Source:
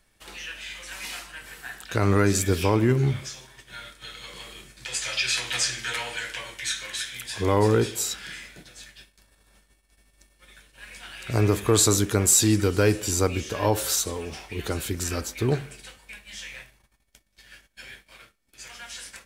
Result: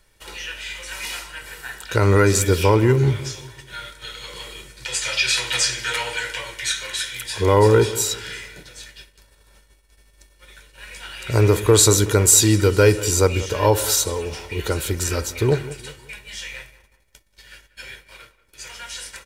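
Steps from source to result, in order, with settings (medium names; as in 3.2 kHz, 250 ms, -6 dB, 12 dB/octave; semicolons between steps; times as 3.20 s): comb 2.1 ms, depth 46%; filtered feedback delay 187 ms, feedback 40%, low-pass 2 kHz, level -16 dB; trim +4.5 dB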